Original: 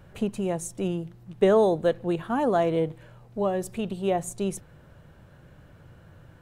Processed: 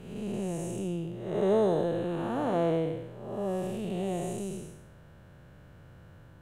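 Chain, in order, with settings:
spectrum smeared in time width 327 ms

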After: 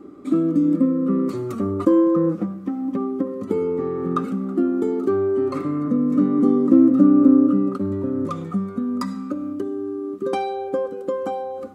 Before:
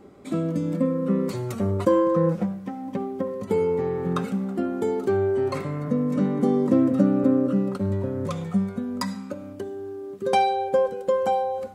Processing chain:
in parallel at −2 dB: downward compressor, threshold −29 dBFS, peak gain reduction 14.5 dB
on the sum: hollow resonant body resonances 300/1,200 Hz, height 18 dB, ringing for 40 ms
level −8.5 dB

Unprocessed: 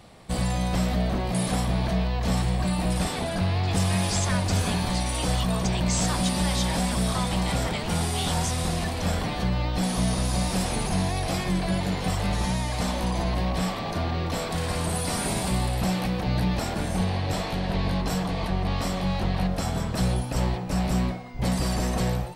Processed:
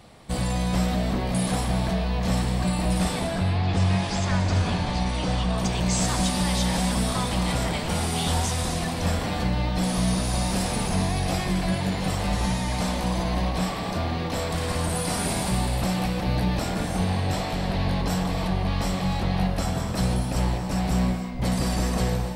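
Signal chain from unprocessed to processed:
0:03.27–0:05.58: high-frequency loss of the air 97 metres
reverb whose tail is shaped and stops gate 330 ms flat, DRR 6 dB

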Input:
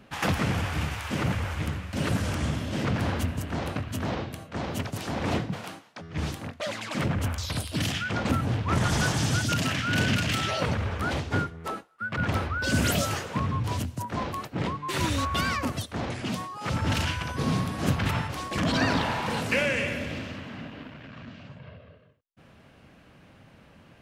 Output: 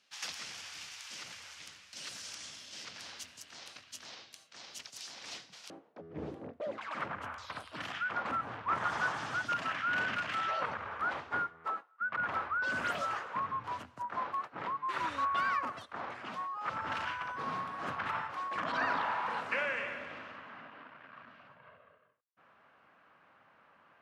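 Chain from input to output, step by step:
resonant band-pass 5,400 Hz, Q 1.9, from 0:05.70 430 Hz, from 0:06.78 1,200 Hz

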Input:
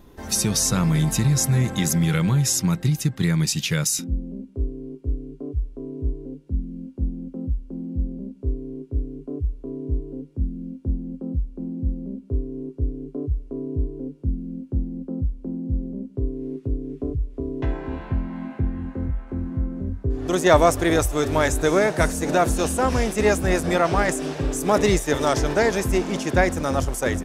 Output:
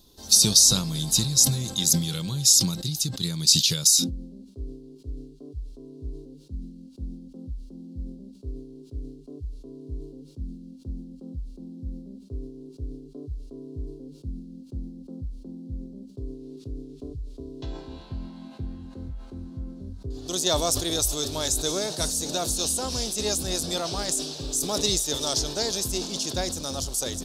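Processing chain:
high shelf with overshoot 2,900 Hz +13 dB, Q 3
level that may fall only so fast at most 84 dB per second
level −10.5 dB

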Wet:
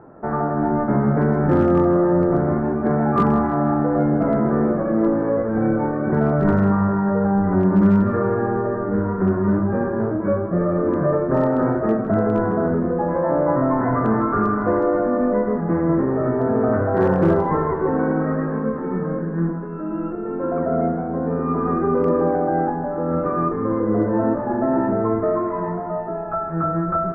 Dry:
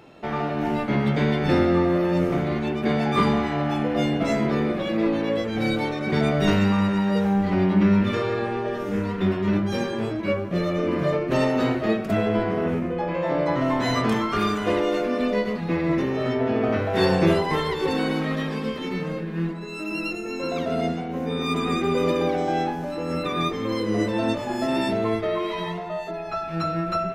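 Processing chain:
Butterworth low-pass 1,600 Hz 48 dB per octave
in parallel at −3 dB: brickwall limiter −17 dBFS, peak gain reduction 9 dB
on the sum: hard clipping −9.5 dBFS, distortion −35 dB
echo with a time of its own for lows and highs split 410 Hz, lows 304 ms, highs 158 ms, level −13 dB

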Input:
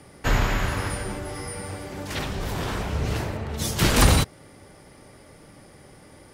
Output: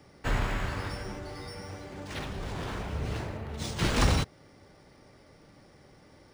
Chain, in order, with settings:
linearly interpolated sample-rate reduction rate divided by 3×
level −7 dB

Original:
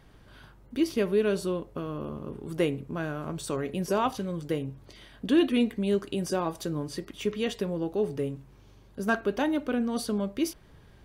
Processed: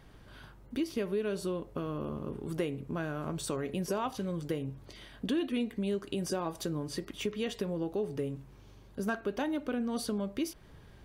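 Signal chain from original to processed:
downward compressor 3 to 1, threshold −31 dBFS, peak gain reduction 10.5 dB

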